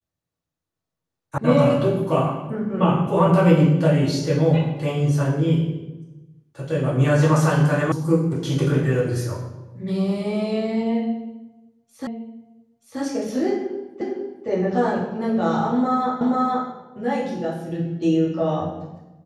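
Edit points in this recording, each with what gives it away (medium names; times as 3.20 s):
1.38 s: sound stops dead
7.92 s: sound stops dead
12.07 s: repeat of the last 0.93 s
14.01 s: repeat of the last 0.46 s
16.21 s: repeat of the last 0.48 s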